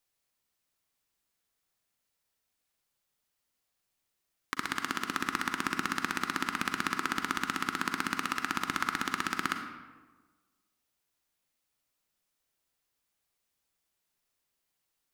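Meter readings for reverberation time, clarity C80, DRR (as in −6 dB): 1.3 s, 8.0 dB, 5.5 dB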